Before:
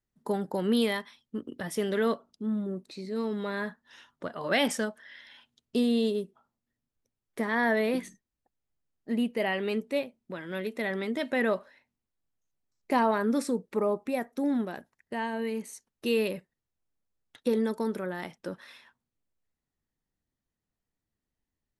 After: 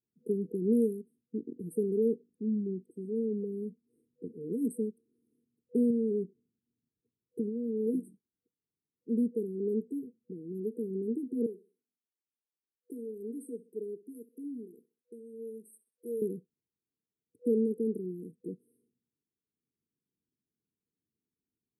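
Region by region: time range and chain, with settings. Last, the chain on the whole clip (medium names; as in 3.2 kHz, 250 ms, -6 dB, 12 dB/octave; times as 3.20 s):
5.90–7.87 s: compression 4:1, threshold -28 dBFS + tilt EQ -1.5 dB/octave
11.46–16.22 s: high-pass 1.1 kHz 6 dB/octave + feedback delay 64 ms, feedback 34%, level -17 dB
whole clip: high-pass 150 Hz 12 dB/octave; FFT band-reject 490–8100 Hz; resonant high shelf 4.7 kHz -8.5 dB, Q 3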